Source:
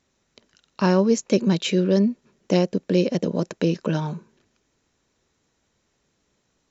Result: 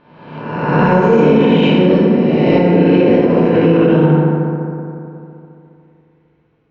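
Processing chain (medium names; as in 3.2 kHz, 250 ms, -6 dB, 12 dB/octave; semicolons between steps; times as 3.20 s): reverse spectral sustain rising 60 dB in 1.43 s; waveshaping leveller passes 1; Chebyshev low-pass 2.7 kHz, order 3; FDN reverb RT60 2.8 s, high-frequency decay 0.4×, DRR -7 dB; peak limiter -1 dBFS, peak gain reduction 6 dB; trim -1 dB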